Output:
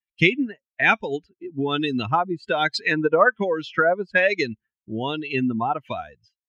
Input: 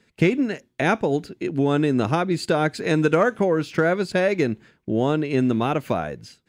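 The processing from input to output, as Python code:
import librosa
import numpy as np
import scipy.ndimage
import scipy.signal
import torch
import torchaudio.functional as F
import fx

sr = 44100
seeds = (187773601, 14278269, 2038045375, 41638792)

y = fx.bin_expand(x, sr, power=2.0)
y = fx.filter_lfo_lowpass(y, sr, shape='sine', hz=1.2, low_hz=820.0, high_hz=4500.0, q=1.9)
y = fx.tilt_shelf(y, sr, db=-6.0, hz=1100.0)
y = F.gain(torch.from_numpy(y), 5.0).numpy()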